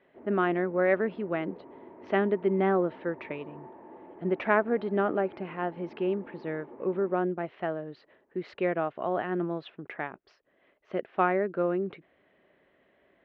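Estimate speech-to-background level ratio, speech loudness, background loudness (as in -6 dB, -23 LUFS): 19.0 dB, -30.0 LUFS, -49.0 LUFS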